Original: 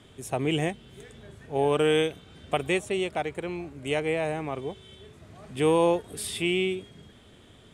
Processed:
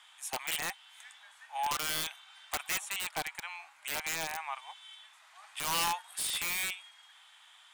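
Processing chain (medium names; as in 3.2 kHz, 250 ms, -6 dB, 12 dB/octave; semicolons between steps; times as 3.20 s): elliptic high-pass 850 Hz, stop band 50 dB; integer overflow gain 26.5 dB; trim +1.5 dB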